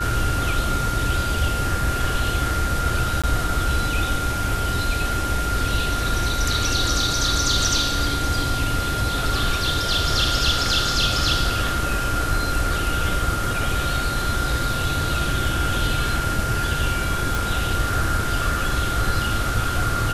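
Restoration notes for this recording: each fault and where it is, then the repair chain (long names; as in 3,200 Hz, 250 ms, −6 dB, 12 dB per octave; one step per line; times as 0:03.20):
whistle 1,400 Hz −26 dBFS
0:03.22–0:03.24: drop-out 16 ms
0:17.35: click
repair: click removal
notch filter 1,400 Hz, Q 30
repair the gap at 0:03.22, 16 ms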